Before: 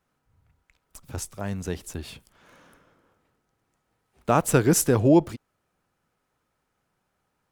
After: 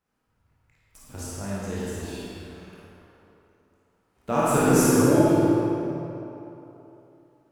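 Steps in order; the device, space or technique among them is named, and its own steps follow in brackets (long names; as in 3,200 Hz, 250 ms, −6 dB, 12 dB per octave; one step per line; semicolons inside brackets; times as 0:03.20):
tunnel (flutter between parallel walls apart 9.4 metres, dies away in 0.73 s; convolution reverb RT60 3.2 s, pre-delay 18 ms, DRR −7.5 dB)
level −8 dB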